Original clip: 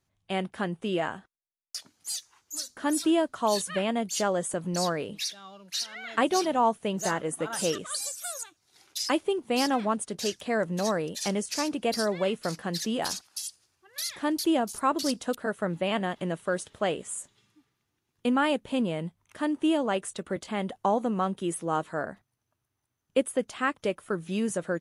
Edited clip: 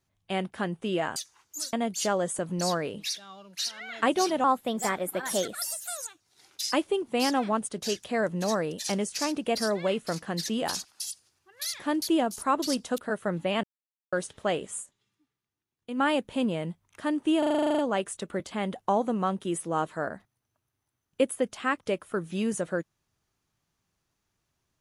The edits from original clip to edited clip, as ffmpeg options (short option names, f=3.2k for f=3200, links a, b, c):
-filter_complex "[0:a]asplit=19[a][b][c][d][e][f][g][h][i][j][k][l][m][n][o][p][q][r][s];[a]atrim=end=1.162[t];[b]atrim=start=2.128:end=2.702[u];[c]atrim=start=3.878:end=6.594[v];[d]atrim=start=6.59:end=8.24,asetpts=PTS-STARTPTS,asetrate=50715,aresample=44100[w];[e]atrim=start=8.236:end=16,asetpts=PTS-STARTPTS,afade=t=out:st=7.76:d=0.004:c=hsin[x];[f]atrim=start=16:end=16.49,asetpts=PTS-STARTPTS,volume=0[y];[g]atrim=start=16.49:end=17.47,asetpts=PTS-STARTPTS,afade=t=in:d=0.004:c=hsin,afade=t=out:st=0.67:d=0.31:c=exp:silence=0.281838[z];[h]atrim=start=17.47:end=18.06,asetpts=PTS-STARTPTS,volume=-11dB[aa];[i]atrim=start=18.06:end=19.792,asetpts=PTS-STARTPTS,afade=t=in:d=0.31:c=exp:silence=0.281838[ab];[j]atrim=start=19.748:end=19.792[ac];[k]atrim=start=19.748:end=19.792[ad];[l]atrim=start=19.748:end=19.792[ae];[m]atrim=start=19.748:end=19.792[af];[n]atrim=start=19.748:end=19.792[ag];[o]atrim=start=19.748:end=19.792[ah];[p]atrim=start=19.748:end=19.792[ai];[q]atrim=start=19.748:end=19.792[aj];[r]atrim=start=19.748:end=19.792[ak];[s]atrim=start=19.748[al];[t][u]acrossfade=d=0.004:c1=hsin:c2=hsin[am];[am][v]acrossfade=d=0.004:c1=hsin:c2=hsin[an];[an][w]acrossfade=d=0.004:c1=hsin:c2=hsin[ao];[x][y][z][aa][ab]concat=n=5:v=0:a=1[ap];[ao][ap]acrossfade=d=0.004:c1=hsin:c2=hsin[aq];[aq][ac]acrossfade=d=0.004:c1=hsin:c2=hsin[ar];[ar][ad]acrossfade=d=0.004:c1=hsin:c2=hsin[as];[as][ae]acrossfade=d=0.004:c1=hsin:c2=hsin[at];[at][af]acrossfade=d=0.004:c1=hsin:c2=hsin[au];[au][ag]acrossfade=d=0.004:c1=hsin:c2=hsin[av];[av][ah]acrossfade=d=0.004:c1=hsin:c2=hsin[aw];[aw][ai]acrossfade=d=0.004:c1=hsin:c2=hsin[ax];[ax][aj]acrossfade=d=0.004:c1=hsin:c2=hsin[ay];[ay][ak]acrossfade=d=0.004:c1=hsin:c2=hsin[az];[az][al]acrossfade=d=0.004:c1=hsin:c2=hsin"